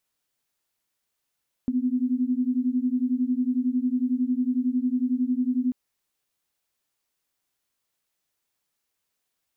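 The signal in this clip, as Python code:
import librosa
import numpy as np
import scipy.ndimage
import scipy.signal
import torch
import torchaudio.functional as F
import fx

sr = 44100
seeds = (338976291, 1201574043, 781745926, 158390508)

y = fx.two_tone_beats(sr, length_s=4.04, hz=246.0, beat_hz=11.0, level_db=-24.5)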